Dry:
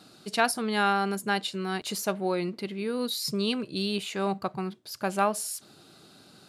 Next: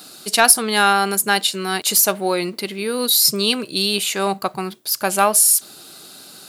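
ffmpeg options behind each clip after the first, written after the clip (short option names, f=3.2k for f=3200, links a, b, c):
-af "aemphasis=mode=production:type=bsi,acontrast=90,volume=2.5dB"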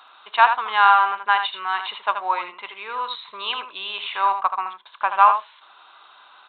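-filter_complex "[0:a]highpass=f=1k:t=q:w=6.9,aresample=8000,aresample=44100,asplit=2[a][b];[b]aecho=0:1:79:0.398[c];[a][c]amix=inputs=2:normalize=0,volume=-6dB"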